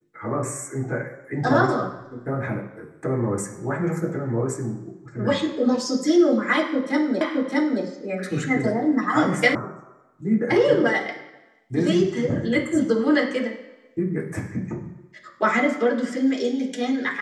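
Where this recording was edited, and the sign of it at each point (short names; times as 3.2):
7.21 repeat of the last 0.62 s
9.55 sound cut off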